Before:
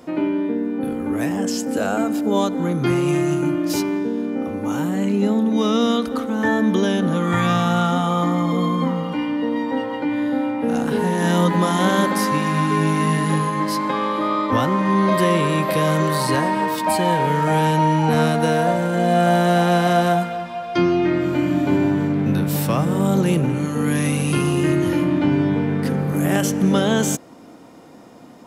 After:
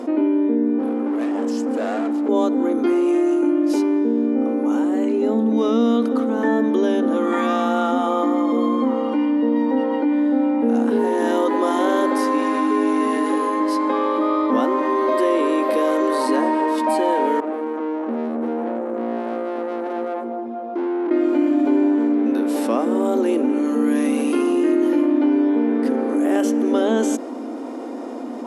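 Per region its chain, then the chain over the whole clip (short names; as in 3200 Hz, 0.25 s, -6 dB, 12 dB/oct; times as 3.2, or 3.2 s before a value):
0.79–2.29 HPF 300 Hz 6 dB/oct + high shelf 6400 Hz -10 dB + hard clip -26 dBFS
17.4–21.11 EQ curve 330 Hz 0 dB, 720 Hz -10 dB, 2600 Hz -23 dB + tube stage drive 28 dB, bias 0.7
whole clip: FFT band-pass 220–12000 Hz; tilt shelf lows +7 dB, about 1100 Hz; fast leveller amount 50%; gain -5 dB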